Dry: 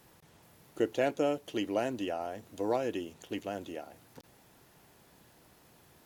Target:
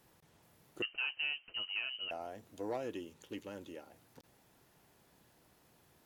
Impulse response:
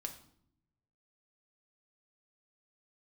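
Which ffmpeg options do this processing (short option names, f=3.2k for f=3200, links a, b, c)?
-filter_complex "[0:a]asoftclip=type=tanh:threshold=-22.5dB,asettb=1/sr,asplit=3[a][b][c];[a]atrim=end=0.824[d];[b]atrim=start=0.82:end=2.11,asetpts=PTS-STARTPTS,afade=t=in:d=0.004:c=qsin,afade=t=out:st=1.286:d=0.004:c=qsin,lowpass=f=2.7k:t=q:w=0.5098,lowpass=f=2.7k:t=q:w=0.6013,lowpass=f=2.7k:t=q:w=0.9,lowpass=f=2.7k:t=q:w=2.563,afreqshift=-3200[e];[c]atrim=start=2.106[f];[d][e]acrossfade=d=0.004:c1=hsin:c2=qsin[g];[g][f]acrossfade=d=0.004:c1=qsin:c2=hsin,asettb=1/sr,asplit=3[h][i][j];[h]atrim=end=2.914[k];[i]atrim=start=2.91:end=3.9,asetpts=PTS-STARTPTS,afade=t=in:d=0.004:c=qsin,afade=t=out:st=0.986:d=0.004:c=qsin,asuperstop=centerf=690:order=4:qfactor=5[l];[j]atrim=start=3.896[m];[k][l]acrossfade=d=0.004:c1=hsin:c2=qsin[n];[n][m]acrossfade=d=0.004:c1=qsin:c2=hsin,volume=-6.5dB"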